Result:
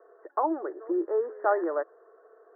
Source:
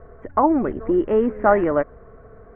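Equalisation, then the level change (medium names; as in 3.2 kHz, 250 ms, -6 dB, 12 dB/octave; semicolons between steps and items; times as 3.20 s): Chebyshev band-pass 330–1800 Hz, order 5; -8.0 dB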